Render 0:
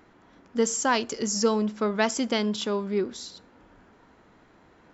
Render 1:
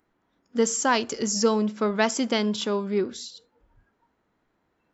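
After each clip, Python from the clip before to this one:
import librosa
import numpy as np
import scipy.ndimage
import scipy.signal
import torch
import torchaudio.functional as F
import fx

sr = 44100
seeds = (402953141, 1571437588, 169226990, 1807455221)

y = fx.noise_reduce_blind(x, sr, reduce_db=17)
y = y * 10.0 ** (1.5 / 20.0)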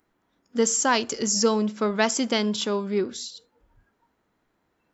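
y = fx.high_shelf(x, sr, hz=4300.0, db=5.0)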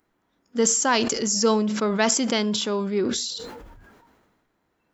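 y = fx.sustainer(x, sr, db_per_s=34.0)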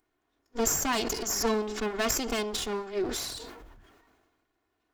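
y = fx.lower_of_two(x, sr, delay_ms=2.8)
y = y * 10.0 ** (-4.5 / 20.0)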